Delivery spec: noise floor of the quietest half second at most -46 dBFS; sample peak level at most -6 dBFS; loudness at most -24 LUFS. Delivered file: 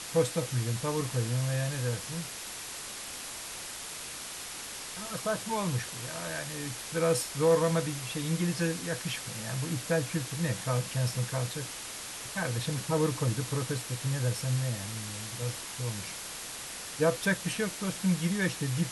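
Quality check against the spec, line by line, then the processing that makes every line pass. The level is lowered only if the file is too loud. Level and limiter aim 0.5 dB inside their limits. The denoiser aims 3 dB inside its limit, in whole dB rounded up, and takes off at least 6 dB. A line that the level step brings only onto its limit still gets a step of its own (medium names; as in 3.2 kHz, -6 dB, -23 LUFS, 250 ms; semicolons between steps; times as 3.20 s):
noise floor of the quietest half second -41 dBFS: fail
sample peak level -13.5 dBFS: pass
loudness -32.0 LUFS: pass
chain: noise reduction 8 dB, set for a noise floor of -41 dBFS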